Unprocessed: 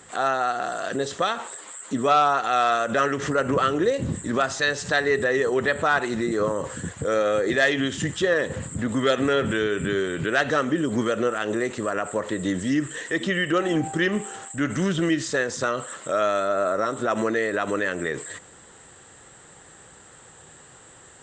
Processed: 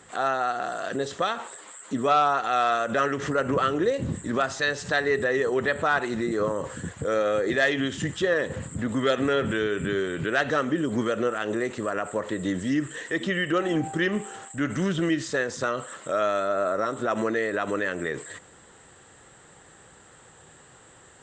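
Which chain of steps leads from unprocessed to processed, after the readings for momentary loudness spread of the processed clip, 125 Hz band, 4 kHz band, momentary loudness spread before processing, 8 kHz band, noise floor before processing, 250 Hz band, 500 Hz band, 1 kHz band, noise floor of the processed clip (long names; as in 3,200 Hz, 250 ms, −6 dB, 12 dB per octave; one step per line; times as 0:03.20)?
7 LU, −2.0 dB, −3.0 dB, 7 LU, −5.0 dB, −49 dBFS, −2.0 dB, −2.0 dB, −2.0 dB, −53 dBFS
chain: high-shelf EQ 6,700 Hz −6 dB
level −2 dB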